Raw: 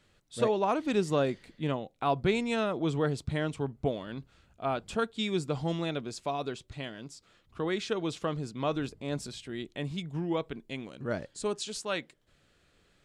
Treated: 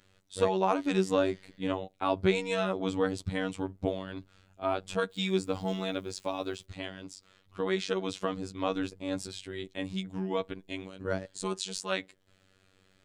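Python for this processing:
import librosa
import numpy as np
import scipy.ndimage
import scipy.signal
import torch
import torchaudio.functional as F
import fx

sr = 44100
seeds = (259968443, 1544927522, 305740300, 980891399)

y = fx.quant_dither(x, sr, seeds[0], bits=12, dither='triangular', at=(5.1, 6.64), fade=0.02)
y = fx.robotise(y, sr, hz=94.9)
y = y * librosa.db_to_amplitude(3.0)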